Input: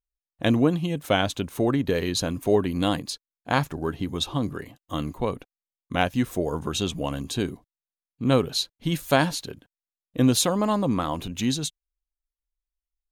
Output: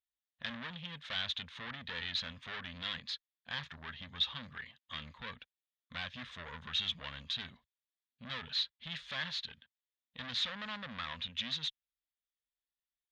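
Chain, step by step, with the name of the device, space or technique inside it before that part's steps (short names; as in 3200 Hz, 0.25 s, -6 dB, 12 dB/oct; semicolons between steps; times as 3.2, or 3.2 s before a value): scooped metal amplifier (tube stage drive 29 dB, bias 0.45; speaker cabinet 92–4000 Hz, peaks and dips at 110 Hz -8 dB, 240 Hz +10 dB, 380 Hz -8 dB, 740 Hz -7 dB, 1800 Hz +7 dB, 3500 Hz +8 dB; passive tone stack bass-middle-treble 10-0-10); gain +1.5 dB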